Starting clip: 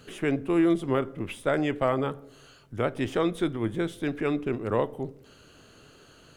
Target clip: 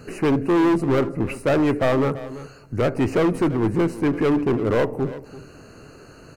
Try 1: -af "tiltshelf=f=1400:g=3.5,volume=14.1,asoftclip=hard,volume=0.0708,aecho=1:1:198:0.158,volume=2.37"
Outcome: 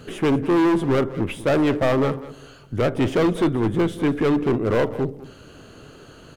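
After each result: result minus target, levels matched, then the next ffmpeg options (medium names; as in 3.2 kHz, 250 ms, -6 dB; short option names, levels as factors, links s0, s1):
echo 139 ms early; 4 kHz band +2.5 dB
-af "tiltshelf=f=1400:g=3.5,volume=14.1,asoftclip=hard,volume=0.0708,aecho=1:1:337:0.158,volume=2.37"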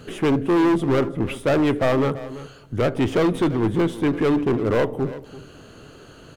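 4 kHz band +3.0 dB
-af "asuperstop=centerf=3400:order=8:qfactor=2.8,tiltshelf=f=1400:g=3.5,volume=14.1,asoftclip=hard,volume=0.0708,aecho=1:1:337:0.158,volume=2.37"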